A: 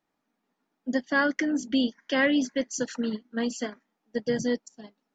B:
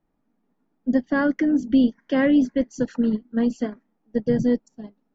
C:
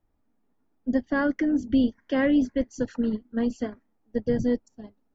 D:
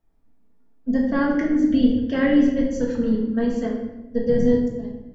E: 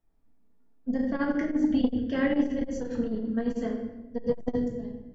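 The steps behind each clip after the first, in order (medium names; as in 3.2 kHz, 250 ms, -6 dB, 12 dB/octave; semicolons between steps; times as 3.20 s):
tilt EQ -4 dB/octave
resonant low shelf 120 Hz +6.5 dB, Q 3; trim -2.5 dB
simulated room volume 450 m³, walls mixed, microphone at 1.6 m
transformer saturation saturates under 210 Hz; trim -5 dB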